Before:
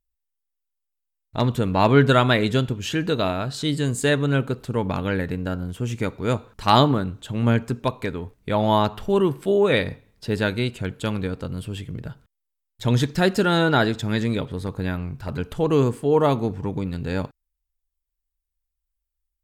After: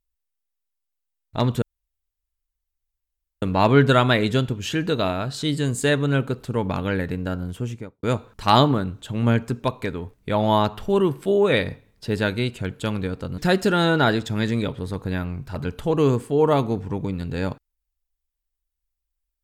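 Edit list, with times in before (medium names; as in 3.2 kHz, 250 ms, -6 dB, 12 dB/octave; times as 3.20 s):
1.62 s: insert room tone 1.80 s
5.72–6.23 s: studio fade out
11.58–13.11 s: delete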